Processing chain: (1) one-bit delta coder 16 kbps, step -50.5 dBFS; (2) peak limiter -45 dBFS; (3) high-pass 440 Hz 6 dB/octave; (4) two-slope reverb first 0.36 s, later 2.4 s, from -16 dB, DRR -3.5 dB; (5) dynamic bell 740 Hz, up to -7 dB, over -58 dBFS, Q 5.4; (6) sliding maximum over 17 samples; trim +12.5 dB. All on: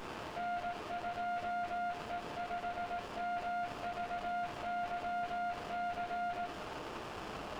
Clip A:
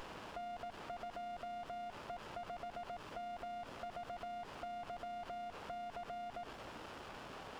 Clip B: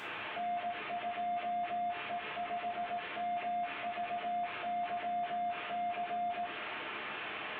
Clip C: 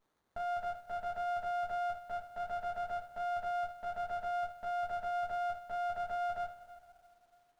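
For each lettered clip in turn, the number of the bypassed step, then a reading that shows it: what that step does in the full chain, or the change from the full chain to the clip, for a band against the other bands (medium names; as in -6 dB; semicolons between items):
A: 4, loudness change -7.5 LU; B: 6, distortion -3 dB; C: 1, 125 Hz band -7.5 dB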